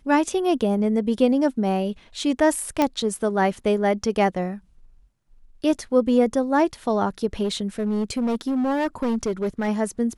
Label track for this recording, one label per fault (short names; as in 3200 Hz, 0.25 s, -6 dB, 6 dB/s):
2.820000	2.820000	pop -7 dBFS
7.430000	9.690000	clipped -19.5 dBFS